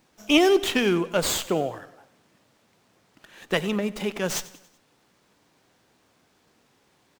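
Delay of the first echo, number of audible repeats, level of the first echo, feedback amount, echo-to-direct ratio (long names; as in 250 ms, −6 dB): 94 ms, 3, −18.5 dB, 51%, −17.0 dB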